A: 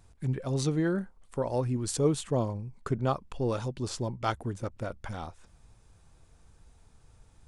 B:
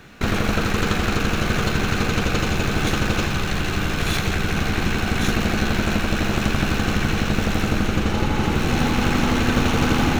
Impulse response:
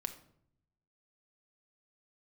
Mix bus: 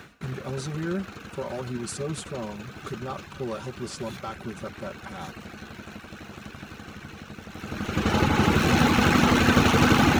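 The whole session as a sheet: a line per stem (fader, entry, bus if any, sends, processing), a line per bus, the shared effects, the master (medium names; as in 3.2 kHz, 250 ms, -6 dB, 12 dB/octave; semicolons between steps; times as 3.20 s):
-3.0 dB, 0.00 s, no send, peak limiter -23.5 dBFS, peak gain reduction 10 dB; comb 5.2 ms, depth 97%
+2.0 dB, 0.00 s, no send, reverb removal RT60 0.62 s; auto duck -20 dB, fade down 0.20 s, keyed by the first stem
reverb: none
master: high-pass 80 Hz; peaking EQ 1.3 kHz +2.5 dB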